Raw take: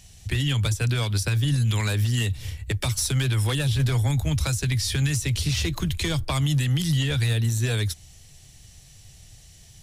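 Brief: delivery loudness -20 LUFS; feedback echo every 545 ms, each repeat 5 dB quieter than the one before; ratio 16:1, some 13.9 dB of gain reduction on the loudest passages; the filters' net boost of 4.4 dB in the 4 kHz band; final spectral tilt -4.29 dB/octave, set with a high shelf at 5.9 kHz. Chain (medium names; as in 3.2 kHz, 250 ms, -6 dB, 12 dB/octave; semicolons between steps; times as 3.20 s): peaking EQ 4 kHz +3.5 dB; treble shelf 5.9 kHz +6 dB; compression 16:1, threshold -33 dBFS; feedback delay 545 ms, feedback 56%, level -5 dB; trim +15 dB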